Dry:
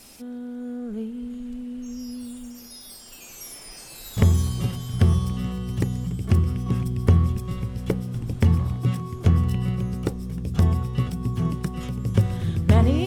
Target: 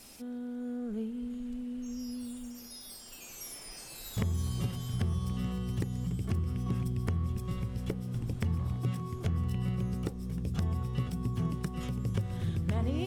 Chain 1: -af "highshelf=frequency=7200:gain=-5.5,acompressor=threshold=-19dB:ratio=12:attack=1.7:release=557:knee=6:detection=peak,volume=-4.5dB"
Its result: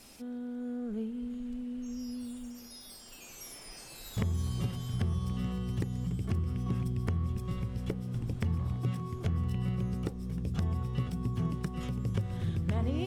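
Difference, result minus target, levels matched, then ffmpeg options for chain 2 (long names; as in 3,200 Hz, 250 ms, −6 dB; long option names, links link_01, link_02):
8,000 Hz band −3.5 dB
-af "acompressor=threshold=-19dB:ratio=12:attack=1.7:release=557:knee=6:detection=peak,volume=-4.5dB"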